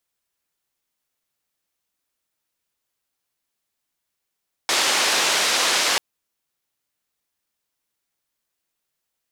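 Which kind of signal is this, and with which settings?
noise band 380–5700 Hz, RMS -20 dBFS 1.29 s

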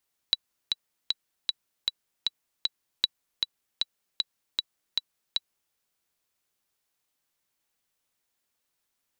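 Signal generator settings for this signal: metronome 155 bpm, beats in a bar 7, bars 2, 3930 Hz, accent 4 dB -8 dBFS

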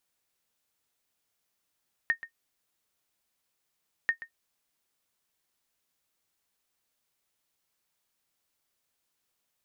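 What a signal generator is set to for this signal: sonar ping 1840 Hz, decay 0.10 s, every 1.99 s, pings 2, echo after 0.13 s, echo -15.5 dB -16 dBFS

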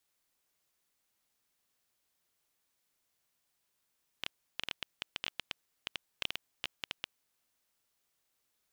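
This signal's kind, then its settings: random clicks 9.2/s -17 dBFS 2.95 s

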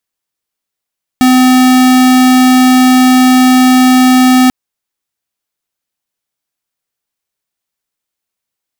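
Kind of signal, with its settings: tone square 255 Hz -6 dBFS 3.29 s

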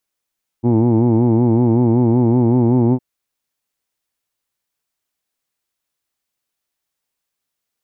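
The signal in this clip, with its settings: formant-synthesis vowel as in who'd, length 2.36 s, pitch 115 Hz, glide +1 st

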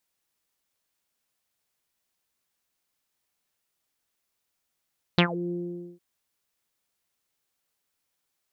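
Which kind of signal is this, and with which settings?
synth note saw F3 24 dB/oct, low-pass 390 Hz, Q 6.6, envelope 3.5 oct, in 0.17 s, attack 2.1 ms, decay 0.09 s, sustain -18 dB, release 0.48 s, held 0.33 s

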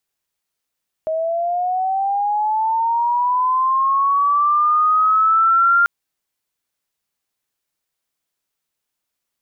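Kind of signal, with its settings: chirp linear 630 Hz -> 1400 Hz -18 dBFS -> -10.5 dBFS 4.79 s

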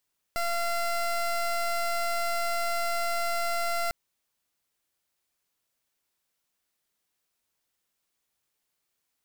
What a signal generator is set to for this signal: pulse 686 Hz, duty 21% -28 dBFS 3.55 s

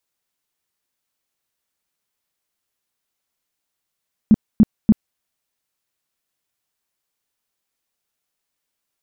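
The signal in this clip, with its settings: tone bursts 216 Hz, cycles 7, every 0.29 s, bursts 3, -6 dBFS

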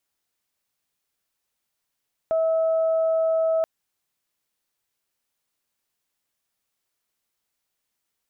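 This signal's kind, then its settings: steady additive tone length 1.33 s, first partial 648 Hz, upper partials -19.5 dB, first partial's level -18.5 dB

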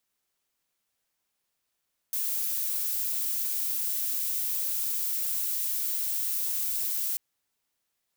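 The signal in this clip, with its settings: noise violet, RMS -29.5 dBFS 5.04 s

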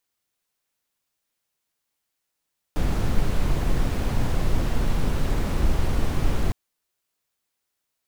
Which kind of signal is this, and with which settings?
noise brown, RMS -20 dBFS 3.76 s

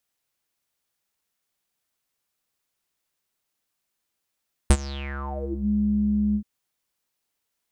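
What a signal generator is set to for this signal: synth note square C#2 12 dB/oct, low-pass 210 Hz, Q 11, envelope 5.5 oct, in 0.94 s, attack 1.6 ms, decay 0.06 s, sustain -21.5 dB, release 0.08 s, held 1.65 s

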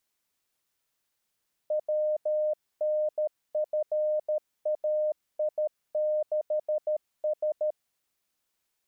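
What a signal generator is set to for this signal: Morse "WNFAI6S" 13 wpm 610 Hz -24 dBFS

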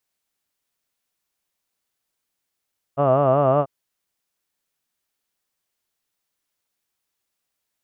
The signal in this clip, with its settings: formant vowel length 0.69 s, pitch 135 Hz, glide +0.5 st, vibrato depth 1.1 st, F1 630 Hz, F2 1200 Hz, F3 2800 Hz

